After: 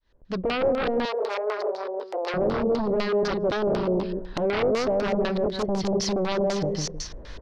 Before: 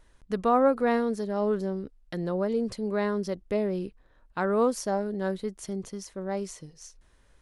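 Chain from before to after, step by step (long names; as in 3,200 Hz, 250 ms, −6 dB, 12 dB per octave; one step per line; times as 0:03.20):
fade in at the beginning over 1.74 s
on a send: repeating echo 158 ms, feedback 20%, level −3.5 dB
on the sum: downward compressor 20 to 1, threshold −35 dBFS, peak gain reduction 17.5 dB
parametric band 8,700 Hz −10 dB 0.58 octaves
sine wavefolder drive 15 dB, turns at −23 dBFS
auto-filter low-pass square 4 Hz 560–4,500 Hz
0:01.05–0:02.34: Butterworth high-pass 420 Hz 36 dB per octave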